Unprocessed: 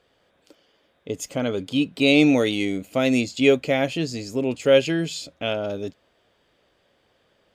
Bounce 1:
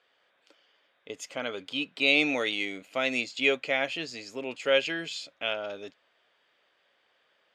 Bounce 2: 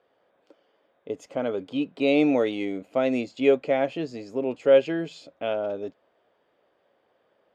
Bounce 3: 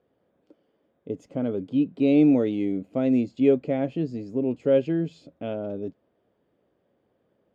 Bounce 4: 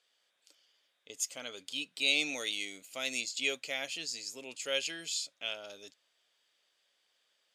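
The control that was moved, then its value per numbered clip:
resonant band-pass, frequency: 2,000, 680, 240, 7,500 Hertz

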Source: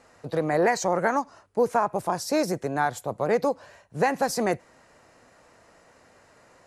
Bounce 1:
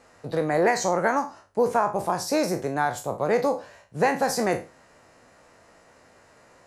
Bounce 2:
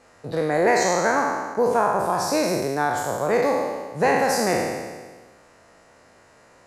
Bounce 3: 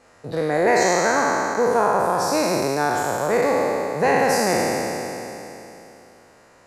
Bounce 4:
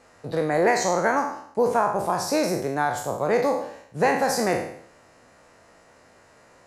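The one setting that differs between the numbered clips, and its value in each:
peak hold with a decay on every bin, RT60: 0.31, 1.47, 3.15, 0.65 seconds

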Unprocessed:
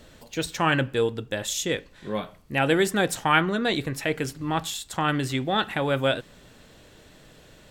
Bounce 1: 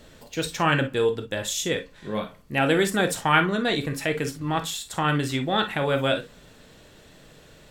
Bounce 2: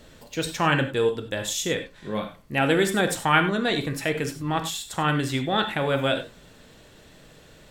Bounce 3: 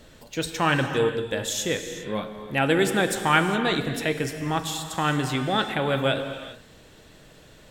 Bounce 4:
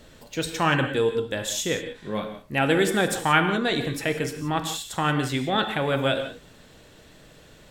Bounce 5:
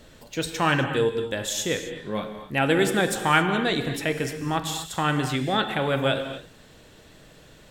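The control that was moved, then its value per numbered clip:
reverb whose tail is shaped and stops, gate: 80, 120, 430, 200, 290 milliseconds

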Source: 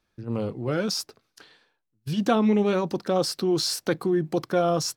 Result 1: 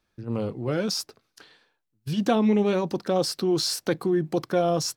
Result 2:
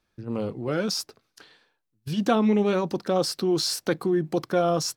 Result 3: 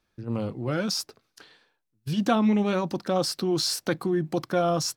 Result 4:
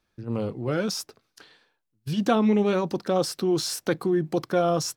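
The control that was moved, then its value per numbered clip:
dynamic equaliser, frequency: 1,300, 120, 430, 4,500 Hertz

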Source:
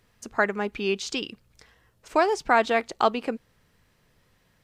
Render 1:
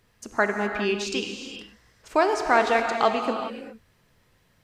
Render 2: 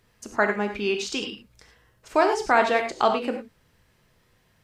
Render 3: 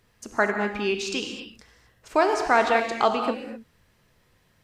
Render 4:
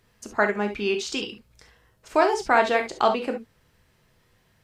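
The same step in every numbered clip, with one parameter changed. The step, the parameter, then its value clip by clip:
reverb whose tail is shaped and stops, gate: 440, 130, 280, 90 milliseconds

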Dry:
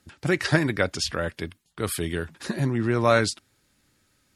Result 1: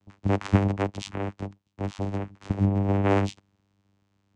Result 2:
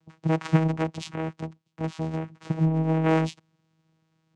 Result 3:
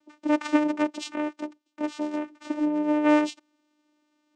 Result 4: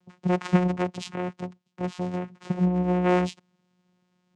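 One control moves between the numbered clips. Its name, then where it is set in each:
channel vocoder, frequency: 99, 160, 300, 180 Hertz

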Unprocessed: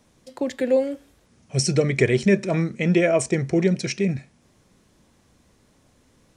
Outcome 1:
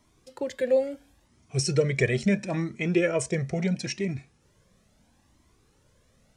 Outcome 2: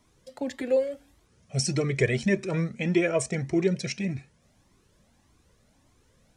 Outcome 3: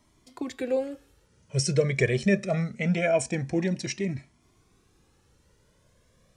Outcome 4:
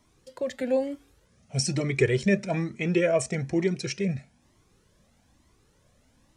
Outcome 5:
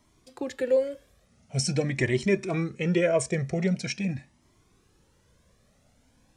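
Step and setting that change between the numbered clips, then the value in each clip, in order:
flanger whose copies keep moving one way, speed: 0.74, 1.7, 0.24, 1.1, 0.45 Hertz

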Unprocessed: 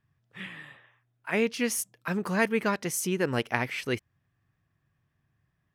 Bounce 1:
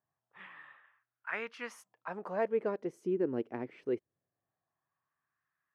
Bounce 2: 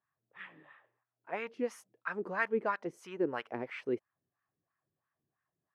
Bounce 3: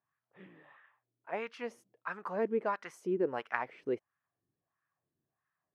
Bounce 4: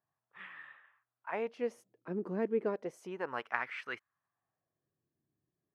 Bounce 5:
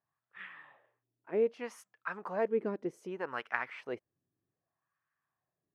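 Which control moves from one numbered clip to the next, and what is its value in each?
LFO wah, speed: 0.22, 3, 1.5, 0.33, 0.64 Hertz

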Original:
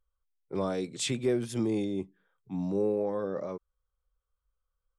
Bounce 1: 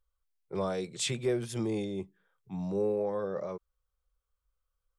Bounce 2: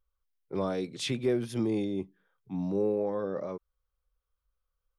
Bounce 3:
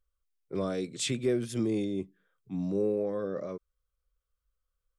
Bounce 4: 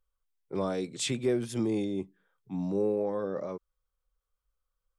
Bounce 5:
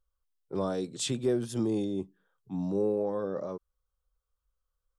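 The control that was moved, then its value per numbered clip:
parametric band, centre frequency: 270, 7,700, 870, 66, 2,200 Hertz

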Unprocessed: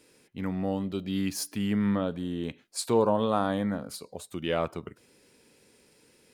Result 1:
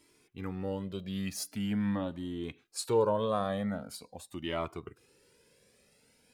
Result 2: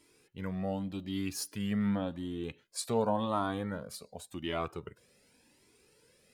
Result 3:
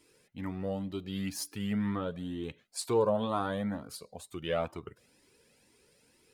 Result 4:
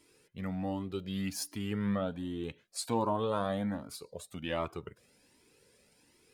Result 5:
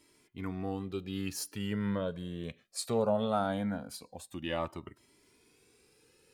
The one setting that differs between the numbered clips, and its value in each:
flanger whose copies keep moving one way, speed: 0.44, 0.89, 2.1, 1.3, 0.2 Hertz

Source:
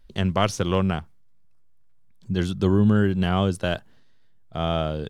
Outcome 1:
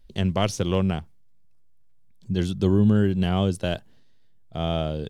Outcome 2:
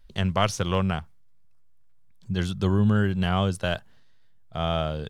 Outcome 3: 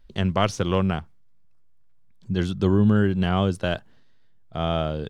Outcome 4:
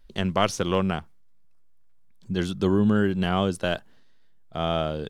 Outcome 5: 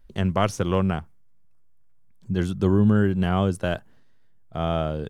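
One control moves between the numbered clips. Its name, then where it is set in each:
parametric band, centre frequency: 1,300, 310, 13,000, 100, 4,000 Hertz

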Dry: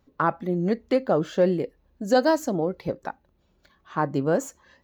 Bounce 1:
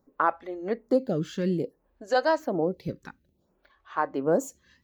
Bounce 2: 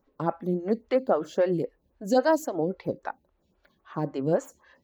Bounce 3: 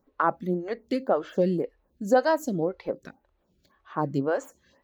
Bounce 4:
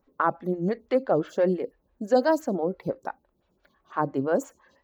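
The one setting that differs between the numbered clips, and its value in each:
phaser with staggered stages, speed: 0.58, 3.7, 1.9, 5.9 Hertz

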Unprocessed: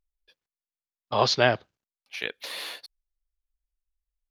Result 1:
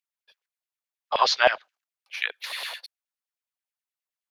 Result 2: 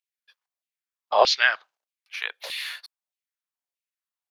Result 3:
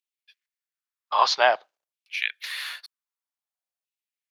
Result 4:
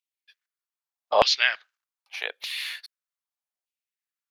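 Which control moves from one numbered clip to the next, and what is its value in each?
auto-filter high-pass, speed: 9.5, 1.6, 0.52, 0.82 Hertz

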